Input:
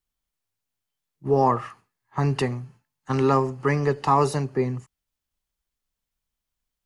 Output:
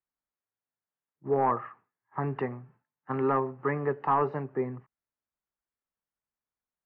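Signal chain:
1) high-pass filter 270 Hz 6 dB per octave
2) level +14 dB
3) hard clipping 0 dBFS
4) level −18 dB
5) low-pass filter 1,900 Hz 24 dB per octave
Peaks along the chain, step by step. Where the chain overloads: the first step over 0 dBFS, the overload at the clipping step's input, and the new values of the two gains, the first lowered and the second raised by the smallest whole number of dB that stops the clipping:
−8.5, +5.5, 0.0, −18.0, −16.5 dBFS
step 2, 5.5 dB
step 2 +8 dB, step 4 −12 dB

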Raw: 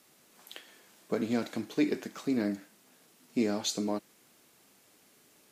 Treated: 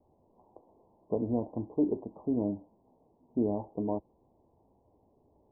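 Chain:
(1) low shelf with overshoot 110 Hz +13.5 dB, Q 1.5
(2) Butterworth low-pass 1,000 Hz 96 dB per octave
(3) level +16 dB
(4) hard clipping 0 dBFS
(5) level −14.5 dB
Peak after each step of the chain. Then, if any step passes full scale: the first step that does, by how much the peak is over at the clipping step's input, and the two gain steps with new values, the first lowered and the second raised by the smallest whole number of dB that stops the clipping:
−16.5, −18.5, −2.5, −2.5, −17.0 dBFS
no step passes full scale

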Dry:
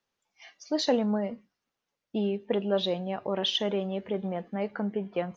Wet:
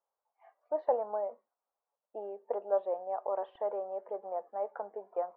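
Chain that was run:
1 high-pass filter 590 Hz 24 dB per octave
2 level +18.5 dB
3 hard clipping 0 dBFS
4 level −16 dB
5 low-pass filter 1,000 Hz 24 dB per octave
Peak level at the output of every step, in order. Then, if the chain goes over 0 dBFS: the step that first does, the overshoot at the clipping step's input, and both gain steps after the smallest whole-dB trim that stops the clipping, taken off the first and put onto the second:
−15.0, +3.5, 0.0, −16.0, −16.5 dBFS
step 2, 3.5 dB
step 2 +14.5 dB, step 4 −12 dB

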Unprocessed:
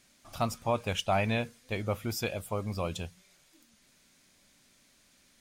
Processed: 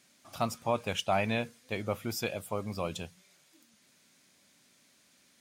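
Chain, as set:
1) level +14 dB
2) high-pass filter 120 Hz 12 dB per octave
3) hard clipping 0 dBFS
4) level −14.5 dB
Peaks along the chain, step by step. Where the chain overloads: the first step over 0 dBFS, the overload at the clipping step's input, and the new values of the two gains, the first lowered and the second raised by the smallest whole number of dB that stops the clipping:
−2.5, −1.5, −1.5, −16.0 dBFS
no step passes full scale

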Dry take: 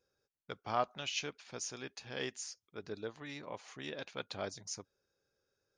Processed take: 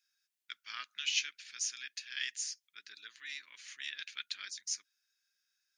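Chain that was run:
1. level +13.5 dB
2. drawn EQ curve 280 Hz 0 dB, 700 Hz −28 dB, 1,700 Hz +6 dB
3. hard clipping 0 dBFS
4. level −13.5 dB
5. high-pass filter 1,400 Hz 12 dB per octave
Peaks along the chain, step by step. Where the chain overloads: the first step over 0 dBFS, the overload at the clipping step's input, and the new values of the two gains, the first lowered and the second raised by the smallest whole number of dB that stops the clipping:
−4.5, −3.0, −3.0, −16.5, −16.5 dBFS
no step passes full scale

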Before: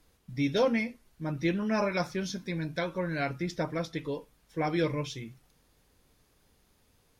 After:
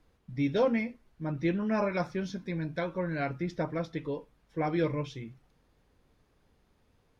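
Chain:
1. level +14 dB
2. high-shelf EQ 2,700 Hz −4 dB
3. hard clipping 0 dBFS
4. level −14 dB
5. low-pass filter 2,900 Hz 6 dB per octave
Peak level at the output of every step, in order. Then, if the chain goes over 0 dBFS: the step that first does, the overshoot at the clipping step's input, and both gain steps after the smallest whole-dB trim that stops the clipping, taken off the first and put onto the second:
−1.0, −1.5, −1.5, −15.5, −16.0 dBFS
no step passes full scale

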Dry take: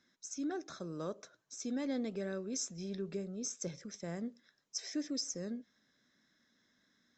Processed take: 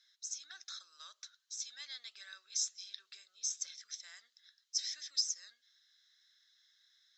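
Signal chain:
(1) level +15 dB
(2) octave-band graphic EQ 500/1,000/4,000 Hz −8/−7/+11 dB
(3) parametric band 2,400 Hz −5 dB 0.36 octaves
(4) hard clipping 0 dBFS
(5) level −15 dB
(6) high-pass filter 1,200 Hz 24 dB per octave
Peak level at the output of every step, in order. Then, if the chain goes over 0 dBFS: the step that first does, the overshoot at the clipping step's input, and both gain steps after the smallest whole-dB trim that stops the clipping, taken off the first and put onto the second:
−10.5, −5.0, −5.0, −5.0, −20.0, −20.0 dBFS
no step passes full scale

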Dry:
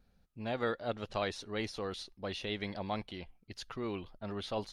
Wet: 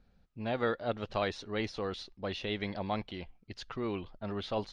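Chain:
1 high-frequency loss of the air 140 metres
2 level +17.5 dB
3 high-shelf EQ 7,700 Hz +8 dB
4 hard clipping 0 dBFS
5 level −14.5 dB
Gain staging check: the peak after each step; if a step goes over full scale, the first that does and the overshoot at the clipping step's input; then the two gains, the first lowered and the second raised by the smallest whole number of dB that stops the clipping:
−22.0, −4.5, −4.5, −4.5, −19.0 dBFS
no step passes full scale

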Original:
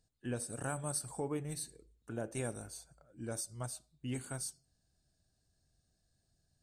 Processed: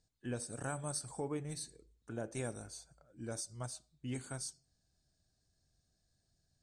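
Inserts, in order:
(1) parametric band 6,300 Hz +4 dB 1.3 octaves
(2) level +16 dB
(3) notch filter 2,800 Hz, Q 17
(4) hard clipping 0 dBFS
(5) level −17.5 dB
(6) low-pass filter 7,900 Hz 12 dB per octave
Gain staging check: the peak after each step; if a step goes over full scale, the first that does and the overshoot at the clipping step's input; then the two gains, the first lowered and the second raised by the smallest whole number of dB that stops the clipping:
−20.0, −4.0, −4.0, −4.0, −21.5, −25.0 dBFS
no step passes full scale

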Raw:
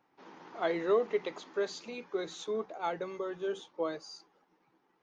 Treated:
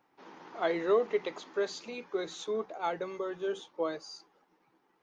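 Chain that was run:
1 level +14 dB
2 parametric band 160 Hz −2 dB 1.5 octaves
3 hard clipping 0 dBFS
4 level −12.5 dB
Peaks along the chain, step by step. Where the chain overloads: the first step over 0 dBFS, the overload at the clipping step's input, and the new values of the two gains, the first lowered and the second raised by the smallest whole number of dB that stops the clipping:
−3.5, −4.0, −4.0, −16.5 dBFS
no step passes full scale

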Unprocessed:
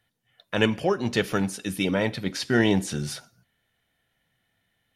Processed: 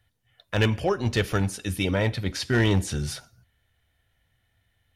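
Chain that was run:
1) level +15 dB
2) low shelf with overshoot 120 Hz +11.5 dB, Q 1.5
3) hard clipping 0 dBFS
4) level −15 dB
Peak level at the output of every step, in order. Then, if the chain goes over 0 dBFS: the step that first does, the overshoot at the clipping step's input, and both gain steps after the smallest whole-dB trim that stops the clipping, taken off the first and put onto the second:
+9.0, +6.5, 0.0, −15.0 dBFS
step 1, 6.5 dB
step 1 +8 dB, step 4 −8 dB

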